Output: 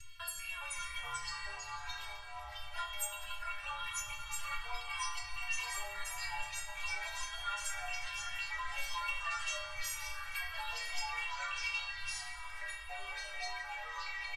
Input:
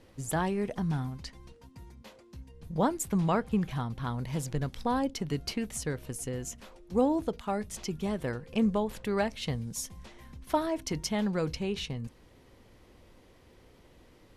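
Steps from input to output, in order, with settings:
reversed piece by piece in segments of 195 ms
Chebyshev band-stop filter 100–1,300 Hz, order 3
parametric band 2,800 Hz +14 dB 0.76 octaves
comb filter 3 ms, depth 97%
downward compressor, threshold −37 dBFS, peak gain reduction 15 dB
stiff-string resonator 330 Hz, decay 0.62 s, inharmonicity 0.008
echo through a band-pass that steps 304 ms, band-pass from 650 Hz, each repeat 0.7 octaves, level −11 dB
convolution reverb RT60 1.7 s, pre-delay 3 ms, DRR 2.5 dB
delay with pitch and tempo change per echo 376 ms, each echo −3 semitones, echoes 3
level +18 dB

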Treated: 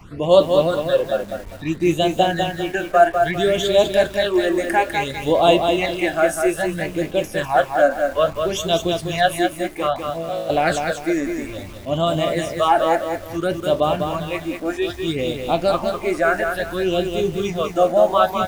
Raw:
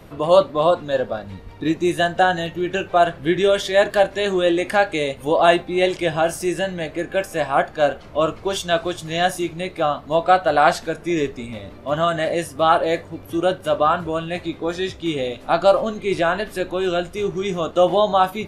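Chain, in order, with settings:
0:10.10–0:10.50: tuned comb filter 55 Hz, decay 0.64 s, harmonics all, mix 100%
all-pass phaser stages 8, 0.6 Hz, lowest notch 120–1,800 Hz
feedback echo at a low word length 200 ms, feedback 35%, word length 7 bits, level −5 dB
level +2.5 dB

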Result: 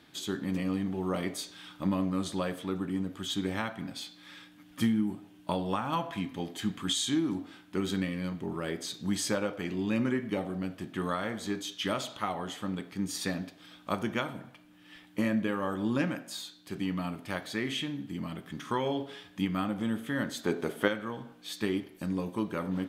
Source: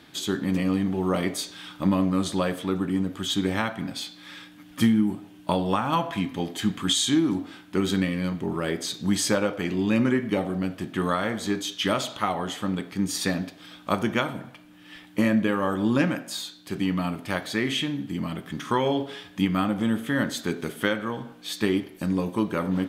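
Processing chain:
0:20.44–0:20.88: parametric band 640 Hz +10 dB 2.1 octaves
level −7 dB

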